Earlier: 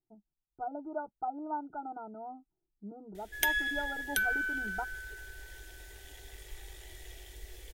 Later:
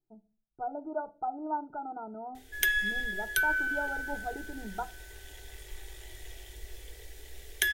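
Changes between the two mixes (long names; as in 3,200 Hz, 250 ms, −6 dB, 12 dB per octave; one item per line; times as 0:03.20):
background: entry −0.80 s
reverb: on, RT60 0.40 s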